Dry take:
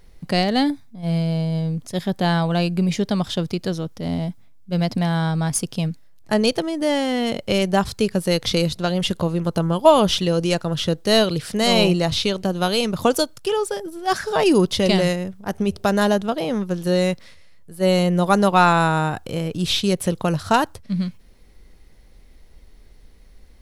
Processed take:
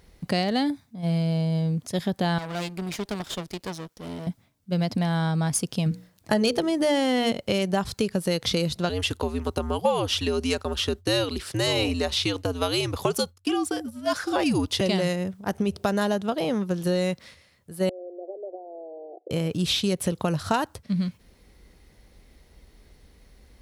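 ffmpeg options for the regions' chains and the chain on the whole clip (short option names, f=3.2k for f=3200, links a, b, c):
-filter_complex "[0:a]asettb=1/sr,asplit=3[a][b][c];[a]atrim=end=2.384[d];[b]atrim=start=2.38:end=4.27,asetpts=PTS-STARTPTS,afade=t=in:d=0.004:c=qsin,afade=t=out:st=1.886:d=0.004:c=qsin,highpass=f=390:p=1,aeval=exprs='max(val(0),0)':c=same[e];[c]atrim=start=4.266[f];[d][e]acrossfade=d=0.004:c1=hsin:c2=qsin[g];[g][f]acrossfade=d=0.004:c1=qsin:c2=hsin,asettb=1/sr,asplit=3[h][i][j];[h]atrim=end=5.864[k];[i]atrim=start=5.86:end=7.32,asetpts=PTS-STARTPTS,afade=t=in:d=0.004:c=qsin,afade=t=out:st=1.456:d=0.004:c=qsin,bandreject=f=60:t=h:w=6,bandreject=f=120:t=h:w=6,bandreject=f=180:t=h:w=6,bandreject=f=240:t=h:w=6,bandreject=f=300:t=h:w=6,bandreject=f=360:t=h:w=6,bandreject=f=420:t=h:w=6,bandreject=f=480:t=h:w=6,acontrast=63[l];[j]atrim=start=7.316[m];[k][l]acrossfade=d=0.004:c1=hsin:c2=qsin[n];[n][m]acrossfade=d=0.004:c1=qsin:c2=hsin,asettb=1/sr,asplit=3[o][p][q];[o]atrim=end=8.894[r];[p]atrim=start=8.89:end=14.81,asetpts=PTS-STARTPTS,afade=t=in:d=0.004:c=qsin,afade=t=out:st=5.916:d=0.004:c=qsin,agate=range=-33dB:threshold=-31dB:ratio=3:release=100:detection=peak,afreqshift=-93,highpass=f=180:p=1[s];[q]atrim=start=14.806[t];[r][s]acrossfade=d=0.004:c1=hsin:c2=qsin[u];[u][t]acrossfade=d=0.004:c1=qsin:c2=hsin,asettb=1/sr,asplit=3[v][w][x];[v]atrim=end=17.894[y];[w]atrim=start=17.89:end=19.31,asetpts=PTS-STARTPTS,afade=t=in:d=0.004:c=qsin,afade=t=out:st=1.416:d=0.004:c=qsin,acompressor=threshold=-27dB:ratio=12:attack=3.2:release=140:knee=1:detection=peak,acrusher=bits=7:dc=4:mix=0:aa=0.000001,asuperpass=centerf=480:order=12:qfactor=1.3[z];[x]atrim=start=19.306[aa];[y][z]acrossfade=d=0.004:c1=hsin:c2=qsin[ab];[ab][aa]acrossfade=d=0.004:c1=qsin:c2=hsin,highpass=45,acompressor=threshold=-22dB:ratio=3"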